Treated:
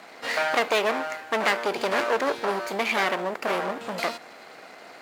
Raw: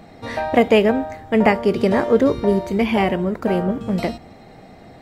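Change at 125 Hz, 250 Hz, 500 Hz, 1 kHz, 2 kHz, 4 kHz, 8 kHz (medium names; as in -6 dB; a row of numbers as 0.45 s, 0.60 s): -20.0 dB, -17.0 dB, -9.0 dB, -3.0 dB, +0.5 dB, +1.0 dB, no reading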